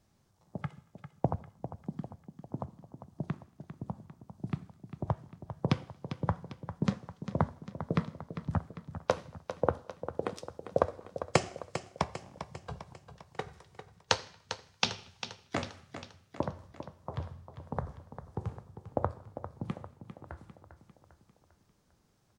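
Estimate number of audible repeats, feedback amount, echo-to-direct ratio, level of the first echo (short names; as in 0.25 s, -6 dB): 5, 52%, -9.5 dB, -11.0 dB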